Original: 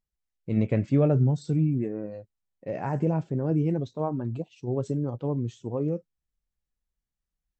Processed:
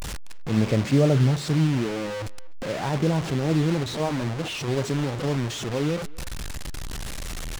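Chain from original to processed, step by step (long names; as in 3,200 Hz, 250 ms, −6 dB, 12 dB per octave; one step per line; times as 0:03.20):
linear delta modulator 64 kbit/s, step −27 dBFS
far-end echo of a speakerphone 250 ms, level −22 dB
slew-rate limiting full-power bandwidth 93 Hz
level +2.5 dB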